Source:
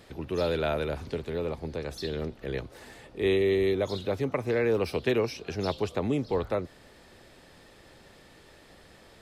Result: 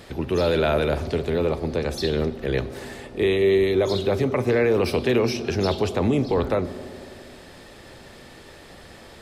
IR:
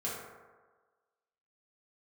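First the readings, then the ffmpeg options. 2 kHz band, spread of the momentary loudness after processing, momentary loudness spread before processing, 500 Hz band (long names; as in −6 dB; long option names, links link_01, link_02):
+6.5 dB, 13 LU, 11 LU, +6.5 dB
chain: -filter_complex "[0:a]alimiter=limit=-21.5dB:level=0:latency=1:release=11,asplit=2[link_01][link_02];[1:a]atrim=start_sample=2205,asetrate=22932,aresample=44100[link_03];[link_02][link_03]afir=irnorm=-1:irlink=0,volume=-18.5dB[link_04];[link_01][link_04]amix=inputs=2:normalize=0,volume=8dB"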